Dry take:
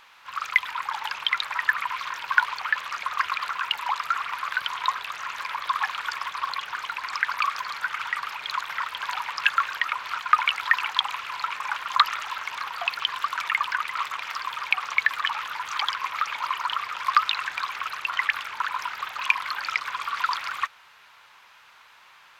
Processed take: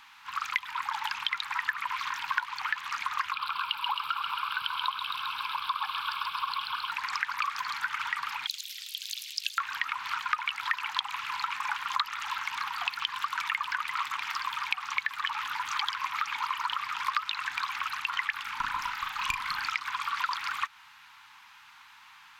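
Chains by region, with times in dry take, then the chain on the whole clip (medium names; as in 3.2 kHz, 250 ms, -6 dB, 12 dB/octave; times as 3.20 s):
3.32–6.91 s: static phaser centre 1.9 kHz, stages 6 + feedback echo behind a high-pass 133 ms, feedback 74%, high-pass 1.8 kHz, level -3.5 dB
8.47–9.58 s: inverse Chebyshev high-pass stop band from 790 Hz, stop band 70 dB + tilt EQ +2.5 dB/octave
18.42–19.68 s: valve stage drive 15 dB, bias 0.35 + doubling 36 ms -6 dB
whole clip: Chebyshev band-stop 300–810 Hz, order 3; compression 4:1, threshold -27 dBFS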